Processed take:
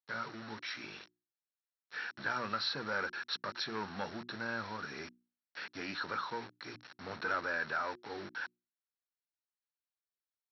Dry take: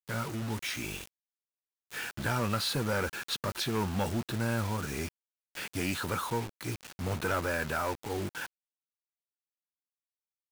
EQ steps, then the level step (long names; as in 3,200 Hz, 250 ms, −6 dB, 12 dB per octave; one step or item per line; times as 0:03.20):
high-pass filter 190 Hz 12 dB per octave
Chebyshev low-pass with heavy ripple 5,700 Hz, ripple 9 dB
mains-hum notches 60/120/180/240/300/360 Hz
0.0 dB